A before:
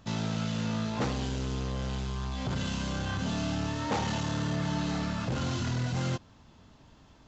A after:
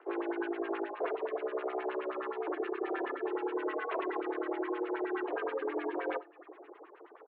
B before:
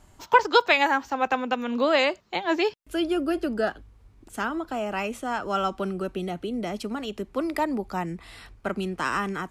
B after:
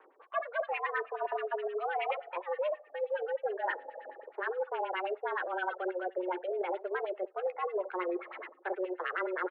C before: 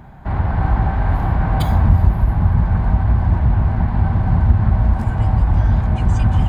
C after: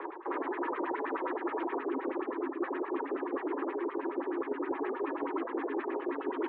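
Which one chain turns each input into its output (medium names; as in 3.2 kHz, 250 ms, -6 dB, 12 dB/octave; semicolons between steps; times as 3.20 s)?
median filter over 15 samples; on a send: early reflections 12 ms -11 dB, 66 ms -10.5 dB; on the sum: dynamic bell 800 Hz, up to -4 dB, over -35 dBFS, Q 1.5; mistuned SSB +370 Hz 160–3500 Hz; FDN reverb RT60 2.4 s, high-frequency decay 0.95×, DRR 16.5 dB; LFO low-pass sine 9.5 Hz 730–2900 Hz; reverb removal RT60 0.63 s; reverse; compression 10:1, threshold -35 dBFS; reverse; frequency shift -190 Hz; trim +4 dB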